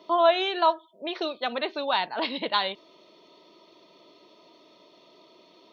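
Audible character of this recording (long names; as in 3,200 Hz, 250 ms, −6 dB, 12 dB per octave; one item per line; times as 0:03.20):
background noise floor −58 dBFS
spectral slope +1.0 dB per octave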